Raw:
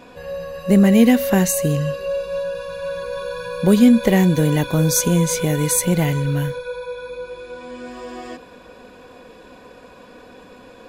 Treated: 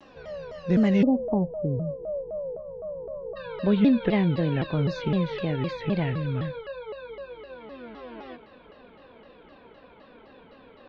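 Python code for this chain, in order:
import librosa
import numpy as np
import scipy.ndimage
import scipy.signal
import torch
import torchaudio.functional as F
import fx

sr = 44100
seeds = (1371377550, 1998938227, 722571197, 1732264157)

y = fx.steep_lowpass(x, sr, hz=fx.steps((0.0, 5900.0), (1.01, 880.0), (3.35, 4100.0)), slope=48)
y = fx.vibrato_shape(y, sr, shape='saw_down', rate_hz=3.9, depth_cents=250.0)
y = y * 10.0 ** (-8.0 / 20.0)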